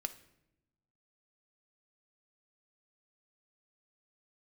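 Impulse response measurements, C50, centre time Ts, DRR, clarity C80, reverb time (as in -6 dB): 14.5 dB, 6 ms, 9.0 dB, 18.0 dB, 0.85 s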